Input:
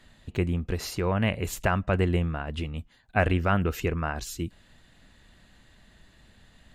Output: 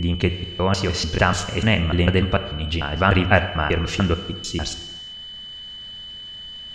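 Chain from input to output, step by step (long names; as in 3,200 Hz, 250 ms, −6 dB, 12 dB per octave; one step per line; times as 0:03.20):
slices reordered back to front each 148 ms, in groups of 4
low-pass filter 6,000 Hz 24 dB per octave
high-shelf EQ 2,800 Hz +9 dB
reverb whose tail is shaped and stops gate 420 ms falling, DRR 9 dB
steady tone 3,000 Hz −40 dBFS
level +6 dB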